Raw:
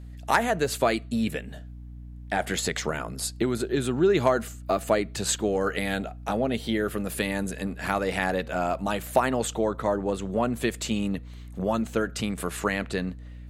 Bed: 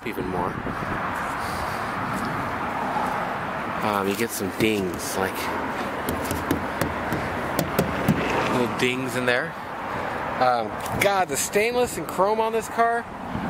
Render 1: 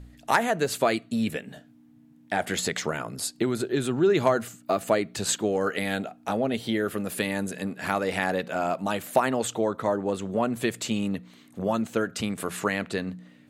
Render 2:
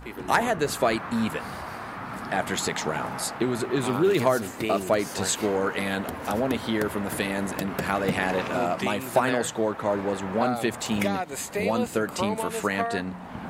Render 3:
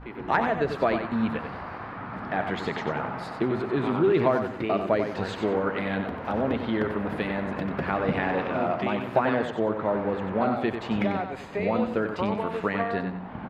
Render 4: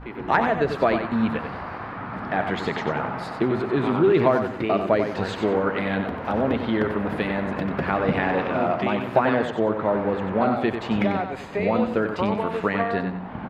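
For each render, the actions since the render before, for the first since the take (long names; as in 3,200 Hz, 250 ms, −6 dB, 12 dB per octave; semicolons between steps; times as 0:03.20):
hum removal 60 Hz, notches 3
mix in bed −8.5 dB
high-frequency loss of the air 340 metres; repeating echo 93 ms, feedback 30%, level −7.5 dB
level +3.5 dB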